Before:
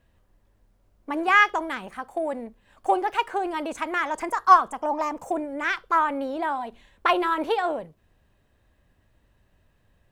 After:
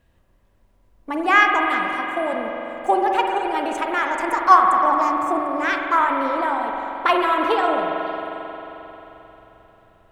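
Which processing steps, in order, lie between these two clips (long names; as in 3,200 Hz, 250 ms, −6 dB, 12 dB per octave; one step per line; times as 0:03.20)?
echo through a band-pass that steps 187 ms, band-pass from 620 Hz, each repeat 1.4 octaves, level −10 dB
spring reverb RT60 3.8 s, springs 44 ms, chirp 60 ms, DRR 1.5 dB
level +2.5 dB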